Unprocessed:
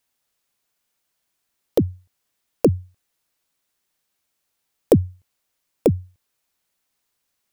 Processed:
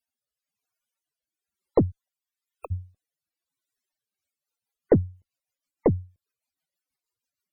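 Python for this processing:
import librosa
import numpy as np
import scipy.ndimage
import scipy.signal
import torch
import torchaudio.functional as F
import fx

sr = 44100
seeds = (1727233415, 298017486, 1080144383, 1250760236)

y = fx.highpass(x, sr, hz=fx.line((1.9, 420.0), (2.7, 990.0)), slope=24, at=(1.9, 2.7), fade=0.02)
y = fx.cheby_harmonics(y, sr, harmonics=(3, 6), levels_db=(-25, -23), full_scale_db=-1.5)
y = fx.spec_topn(y, sr, count=64)
y = fx.rotary_switch(y, sr, hz=1.0, then_hz=6.3, switch_at_s=3.83)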